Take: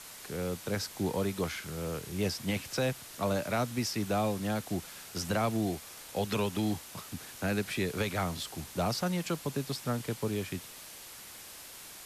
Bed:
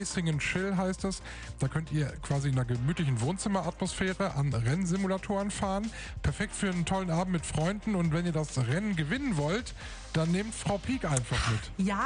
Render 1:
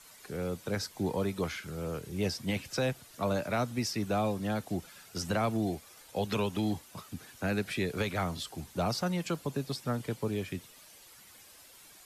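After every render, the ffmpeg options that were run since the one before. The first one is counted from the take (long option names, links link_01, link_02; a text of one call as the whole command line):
ffmpeg -i in.wav -af "afftdn=noise_reduction=10:noise_floor=-48" out.wav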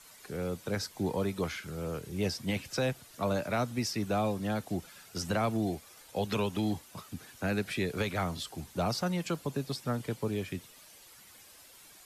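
ffmpeg -i in.wav -af anull out.wav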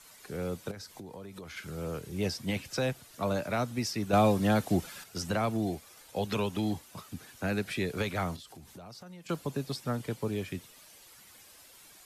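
ffmpeg -i in.wav -filter_complex "[0:a]asettb=1/sr,asplit=3[link_01][link_02][link_03];[link_01]atrim=end=0.714[link_04];[link_02]atrim=start=0.71:end=1.57,asetpts=PTS-STARTPTS,afade=type=in:duration=0.004:curve=qsin,afade=type=out:start_time=0.856:duration=0.004:curve=qsin,acompressor=threshold=-40dB:ratio=16:attack=3.2:release=140:knee=1:detection=peak[link_05];[link_03]atrim=start=1.566[link_06];[link_04][link_05]acrossfade=duration=0.004:curve1=hsin:curve2=qsin[link_07];[link_07][link_06]acrossfade=duration=0.004:curve1=qsin:curve2=hsin,asettb=1/sr,asplit=3[link_08][link_09][link_10];[link_08]atrim=end=4.134[link_11];[link_09]atrim=start=4.13:end=5.04,asetpts=PTS-STARTPTS,afade=type=in:duration=0.004:curve=qsin,afade=type=out:start_time=0.906:duration=0.004:curve=qsin,acontrast=74[link_12];[link_10]atrim=start=5.036[link_13];[link_11][link_12]acrossfade=duration=0.004:curve1=hsin:curve2=qsin[link_14];[link_14][link_13]acrossfade=duration=0.004:curve1=qsin:curve2=hsin,asettb=1/sr,asplit=3[link_15][link_16][link_17];[link_15]atrim=end=8.364[link_18];[link_16]atrim=start=8.36:end=9.29,asetpts=PTS-STARTPTS,afade=type=in:duration=0.004:curve=qsin,afade=type=out:start_time=0.926:duration=0.004:curve=qsin,acompressor=threshold=-46dB:ratio=6:attack=3.2:release=140:knee=1:detection=peak[link_19];[link_17]atrim=start=9.286[link_20];[link_18][link_19]acrossfade=duration=0.004:curve1=hsin:curve2=qsin[link_21];[link_21][link_20]acrossfade=duration=0.004:curve1=qsin:curve2=hsin" out.wav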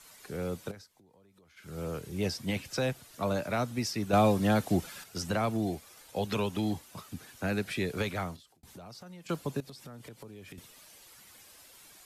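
ffmpeg -i in.wav -filter_complex "[0:a]asettb=1/sr,asplit=3[link_01][link_02][link_03];[link_01]atrim=end=9.604[link_04];[link_02]atrim=start=9.6:end=10.58,asetpts=PTS-STARTPTS,afade=type=in:duration=0.004:curve=qsin,afade=type=out:start_time=0.976:duration=0.004:curve=qsin,acompressor=threshold=-43dB:ratio=12:attack=3.2:release=140:knee=1:detection=peak[link_05];[link_03]atrim=start=10.576[link_06];[link_04][link_05]acrossfade=duration=0.004:curve1=hsin:curve2=qsin[link_07];[link_07][link_06]acrossfade=duration=0.004:curve1=qsin:curve2=hsin,asplit=4[link_08][link_09][link_10][link_11];[link_08]atrim=end=0.89,asetpts=PTS-STARTPTS,afade=type=out:start_time=0.66:duration=0.23:silence=0.133352[link_12];[link_09]atrim=start=0.89:end=1.56,asetpts=PTS-STARTPTS,volume=-17.5dB[link_13];[link_10]atrim=start=1.56:end=8.63,asetpts=PTS-STARTPTS,afade=type=in:duration=0.23:silence=0.133352,afade=type=out:start_time=6.51:duration=0.56[link_14];[link_11]atrim=start=8.63,asetpts=PTS-STARTPTS,afade=type=in:duration=0.004:curve=hsin[link_15];[link_12][link_13][link_14][link_15]concat=n=4:v=0:a=1" out.wav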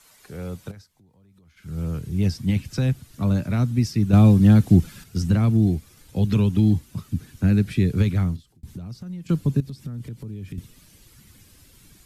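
ffmpeg -i in.wav -af "asubboost=boost=11.5:cutoff=200" out.wav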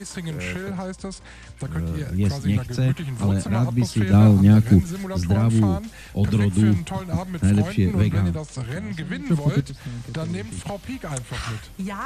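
ffmpeg -i in.wav -i bed.wav -filter_complex "[1:a]volume=-0.5dB[link_01];[0:a][link_01]amix=inputs=2:normalize=0" out.wav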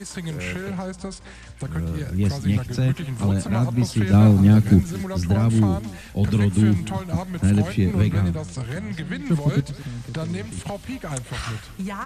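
ffmpeg -i in.wav -af "aecho=1:1:223:0.141" out.wav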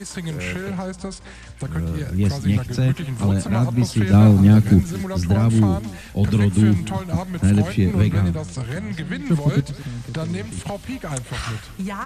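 ffmpeg -i in.wav -af "volume=2dB,alimiter=limit=-3dB:level=0:latency=1" out.wav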